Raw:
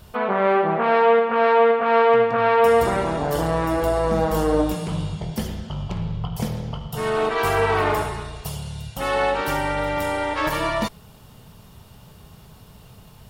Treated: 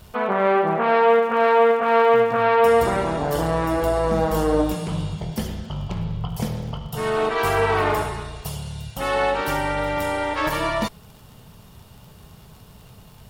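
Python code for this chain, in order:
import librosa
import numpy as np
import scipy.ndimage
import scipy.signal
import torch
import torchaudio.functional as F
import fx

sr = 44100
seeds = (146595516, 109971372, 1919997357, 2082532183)

y = fx.dmg_crackle(x, sr, seeds[0], per_s=fx.steps((0.0, 73.0), (1.1, 400.0), (2.43, 45.0)), level_db=-39.0)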